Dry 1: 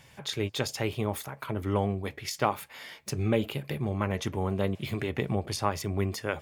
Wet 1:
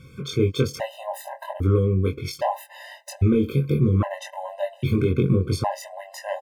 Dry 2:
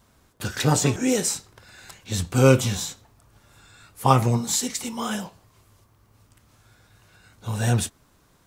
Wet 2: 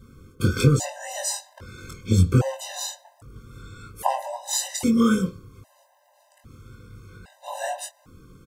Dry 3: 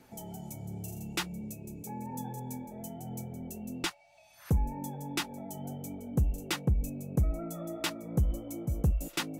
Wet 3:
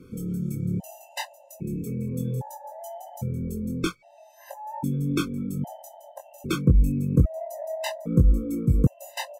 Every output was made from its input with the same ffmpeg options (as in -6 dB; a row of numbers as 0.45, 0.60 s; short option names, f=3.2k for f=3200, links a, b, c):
-filter_complex "[0:a]acontrast=78,tiltshelf=f=970:g=5.5,acompressor=threshold=-15dB:ratio=5,asplit=2[a][b];[b]adelay=22,volume=-4dB[c];[a][c]amix=inputs=2:normalize=0,afftfilt=real='re*gt(sin(2*PI*0.62*pts/sr)*(1-2*mod(floor(b*sr/1024/520),2)),0)':imag='im*gt(sin(2*PI*0.62*pts/sr)*(1-2*mod(floor(b*sr/1024/520),2)),0)':win_size=1024:overlap=0.75"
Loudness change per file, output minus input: +7.5, -1.0, +8.5 LU